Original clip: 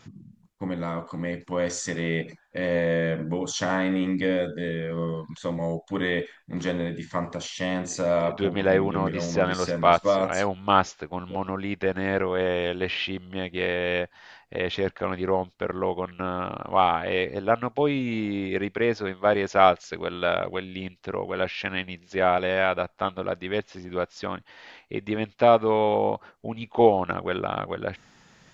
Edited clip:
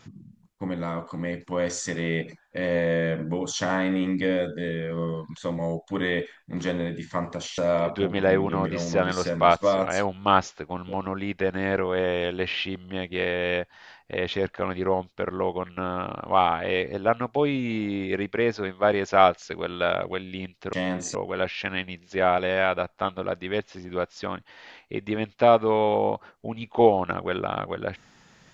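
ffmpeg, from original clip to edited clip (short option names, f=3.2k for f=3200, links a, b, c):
-filter_complex "[0:a]asplit=4[a][b][c][d];[a]atrim=end=7.582[e];[b]atrim=start=7.998:end=21.152[f];[c]atrim=start=7.578:end=8.002[g];[d]atrim=start=21.148[h];[e][f]acrossfade=d=0.004:c1=hsin:c2=hsin[i];[i][g]acrossfade=d=0.004:c1=hsin:c2=hsin[j];[j][h]acrossfade=d=0.004:c1=hsin:c2=hsin"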